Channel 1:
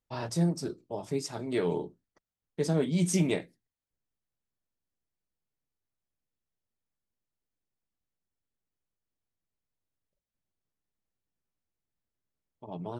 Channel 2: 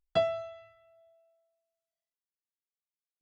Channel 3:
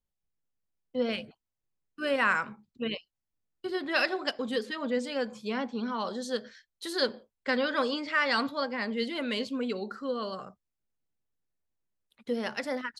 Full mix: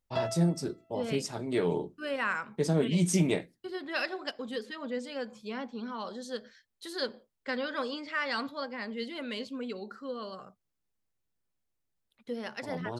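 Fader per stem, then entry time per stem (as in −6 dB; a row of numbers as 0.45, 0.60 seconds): +0.5, −5.5, −5.5 decibels; 0.00, 0.00, 0.00 seconds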